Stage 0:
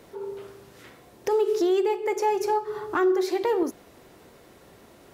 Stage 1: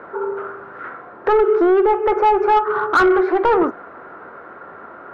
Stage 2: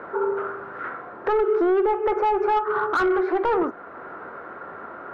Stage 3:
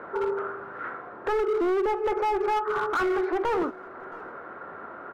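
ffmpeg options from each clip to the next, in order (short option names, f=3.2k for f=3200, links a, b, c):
-filter_complex "[0:a]lowpass=f=1.4k:t=q:w=5.9,asplit=2[a][b];[b]highpass=f=720:p=1,volume=22dB,asoftclip=type=tanh:threshold=-3.5dB[c];[a][c]amix=inputs=2:normalize=0,lowpass=f=1.1k:p=1,volume=-6dB,bandreject=f=60:t=h:w=6,bandreject=f=120:t=h:w=6"
-af "alimiter=limit=-15dB:level=0:latency=1:release=435"
-af "asoftclip=type=hard:threshold=-19dB,aecho=1:1:670:0.0668,volume=-3dB"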